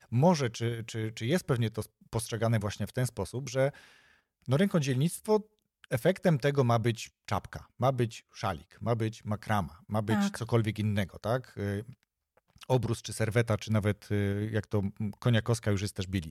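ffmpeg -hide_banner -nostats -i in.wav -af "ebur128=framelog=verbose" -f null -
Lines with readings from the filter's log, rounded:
Integrated loudness:
  I:         -30.9 LUFS
  Threshold: -41.2 LUFS
Loudness range:
  LRA:         3.2 LU
  Threshold: -51.5 LUFS
  LRA low:   -32.8 LUFS
  LRA high:  -29.6 LUFS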